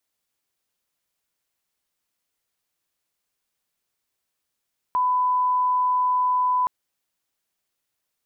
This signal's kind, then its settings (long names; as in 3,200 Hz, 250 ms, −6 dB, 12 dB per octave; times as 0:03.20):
line-up tone −18 dBFS 1.72 s